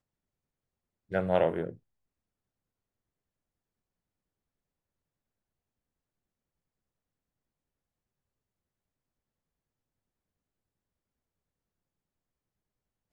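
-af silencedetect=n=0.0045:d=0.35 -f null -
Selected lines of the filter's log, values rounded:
silence_start: 0.00
silence_end: 1.11 | silence_duration: 1.11
silence_start: 1.75
silence_end: 13.12 | silence_duration: 11.37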